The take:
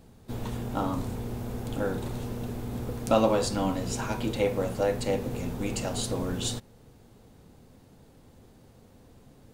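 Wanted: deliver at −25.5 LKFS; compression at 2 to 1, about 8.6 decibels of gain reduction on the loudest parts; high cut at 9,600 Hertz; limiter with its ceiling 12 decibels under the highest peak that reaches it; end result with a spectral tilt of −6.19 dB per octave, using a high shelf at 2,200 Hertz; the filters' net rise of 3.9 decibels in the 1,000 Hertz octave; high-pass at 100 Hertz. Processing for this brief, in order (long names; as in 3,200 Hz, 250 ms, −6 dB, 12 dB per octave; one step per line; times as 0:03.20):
high-pass filter 100 Hz
low-pass filter 9,600 Hz
parametric band 1,000 Hz +6.5 dB
high-shelf EQ 2,200 Hz −7 dB
downward compressor 2 to 1, threshold −31 dBFS
level +11 dB
brickwall limiter −15 dBFS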